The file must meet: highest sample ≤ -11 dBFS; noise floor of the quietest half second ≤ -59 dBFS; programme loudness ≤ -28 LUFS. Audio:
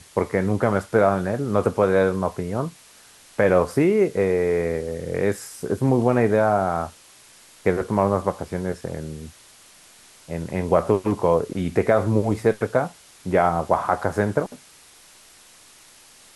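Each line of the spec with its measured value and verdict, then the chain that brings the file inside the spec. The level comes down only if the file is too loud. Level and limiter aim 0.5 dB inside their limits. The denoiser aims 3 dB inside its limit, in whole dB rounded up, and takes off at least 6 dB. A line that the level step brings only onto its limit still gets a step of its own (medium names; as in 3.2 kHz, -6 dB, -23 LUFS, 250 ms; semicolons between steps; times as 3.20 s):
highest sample -5.5 dBFS: fail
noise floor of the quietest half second -50 dBFS: fail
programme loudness -22.0 LUFS: fail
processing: noise reduction 6 dB, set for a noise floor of -50 dBFS; trim -6.5 dB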